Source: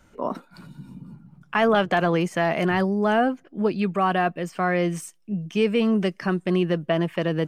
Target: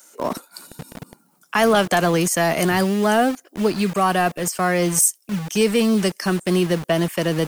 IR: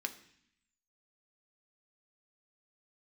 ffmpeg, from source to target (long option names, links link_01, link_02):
-filter_complex "[0:a]acrossover=split=310|930|4300[link_01][link_02][link_03][link_04];[link_01]acrusher=bits=5:mix=0:aa=0.000001[link_05];[link_04]crystalizer=i=8.5:c=0[link_06];[link_05][link_02][link_03][link_06]amix=inputs=4:normalize=0,volume=3dB"